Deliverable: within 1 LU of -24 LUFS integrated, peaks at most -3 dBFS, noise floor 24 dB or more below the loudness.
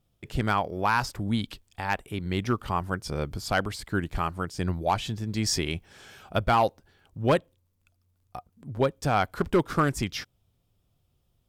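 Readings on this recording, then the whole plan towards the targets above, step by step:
clipped samples 0.3%; clipping level -14.5 dBFS; loudness -28.0 LUFS; peak level -14.5 dBFS; loudness target -24.0 LUFS
-> clip repair -14.5 dBFS; trim +4 dB

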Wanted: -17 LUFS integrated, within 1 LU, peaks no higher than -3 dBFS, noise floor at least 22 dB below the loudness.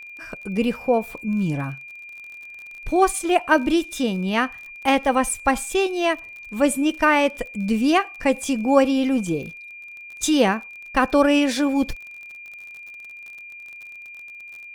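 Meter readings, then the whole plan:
tick rate 33 per s; steady tone 2.4 kHz; tone level -37 dBFS; loudness -21.5 LUFS; peak level -2.5 dBFS; loudness target -17.0 LUFS
-> de-click; band-stop 2.4 kHz, Q 30; trim +4.5 dB; peak limiter -3 dBFS

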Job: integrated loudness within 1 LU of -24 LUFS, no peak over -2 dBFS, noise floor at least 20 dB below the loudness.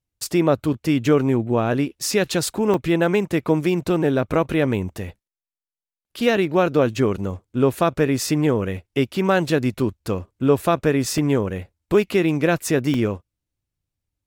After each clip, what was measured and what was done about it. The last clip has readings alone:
dropouts 4; longest dropout 2.0 ms; loudness -21.0 LUFS; peak level -5.0 dBFS; loudness target -24.0 LUFS
-> interpolate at 2.74/9.79/11.18/12.94 s, 2 ms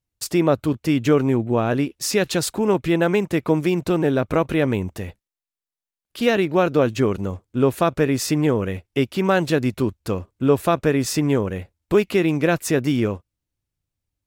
dropouts 0; loudness -21.0 LUFS; peak level -5.0 dBFS; loudness target -24.0 LUFS
-> trim -3 dB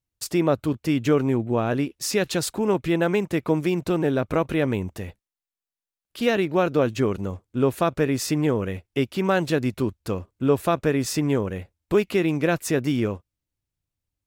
loudness -24.0 LUFS; peak level -8.0 dBFS; noise floor -92 dBFS

